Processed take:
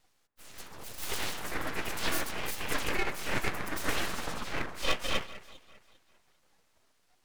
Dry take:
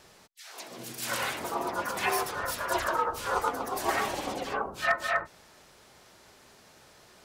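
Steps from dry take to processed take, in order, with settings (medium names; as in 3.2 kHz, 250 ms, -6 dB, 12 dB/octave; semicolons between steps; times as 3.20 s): spectral noise reduction 14 dB; echo whose repeats swap between lows and highs 199 ms, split 1.5 kHz, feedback 52%, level -13.5 dB; full-wave rectifier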